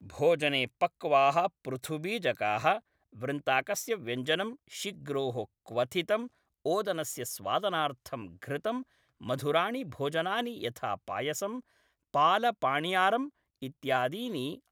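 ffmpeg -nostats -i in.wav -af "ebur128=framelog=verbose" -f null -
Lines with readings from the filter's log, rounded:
Integrated loudness:
  I:         -30.9 LUFS
  Threshold: -41.3 LUFS
Loudness range:
  LRA:         3.7 LU
  Threshold: -51.8 LUFS
  LRA low:   -33.4 LUFS
  LRA high:  -29.8 LUFS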